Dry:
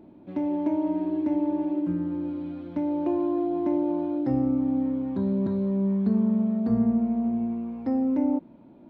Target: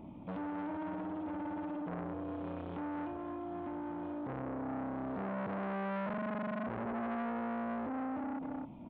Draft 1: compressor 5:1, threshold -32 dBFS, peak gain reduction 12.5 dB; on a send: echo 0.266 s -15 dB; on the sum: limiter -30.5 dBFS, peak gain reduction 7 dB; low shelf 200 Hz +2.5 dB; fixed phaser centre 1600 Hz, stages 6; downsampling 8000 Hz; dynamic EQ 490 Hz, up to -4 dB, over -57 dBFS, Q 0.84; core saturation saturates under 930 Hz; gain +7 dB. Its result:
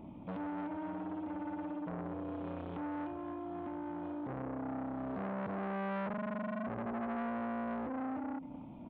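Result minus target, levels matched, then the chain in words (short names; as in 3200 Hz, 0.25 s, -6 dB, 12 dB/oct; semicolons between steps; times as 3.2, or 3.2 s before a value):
compressor: peak gain reduction +12.5 dB
on a send: echo 0.266 s -15 dB; on the sum: limiter -30.5 dBFS, peak gain reduction 17 dB; low shelf 200 Hz +2.5 dB; fixed phaser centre 1600 Hz, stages 6; downsampling 8000 Hz; dynamic EQ 490 Hz, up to -4 dB, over -57 dBFS, Q 0.84; core saturation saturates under 930 Hz; gain +7 dB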